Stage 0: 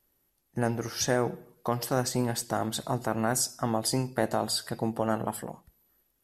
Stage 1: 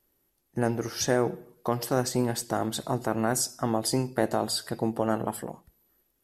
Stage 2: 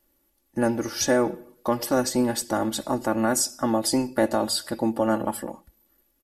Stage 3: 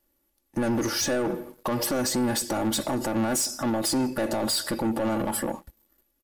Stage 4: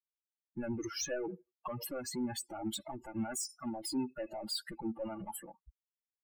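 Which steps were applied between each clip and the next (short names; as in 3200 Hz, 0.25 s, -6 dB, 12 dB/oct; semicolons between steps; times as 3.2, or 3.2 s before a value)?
bell 360 Hz +4 dB 0.98 oct
comb 3.5 ms, depth 69%; gain +2 dB
limiter -20 dBFS, peak gain reduction 10 dB; sample leveller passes 2
per-bin expansion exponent 3; bell 11000 Hz -4.5 dB 0.26 oct; gain -6 dB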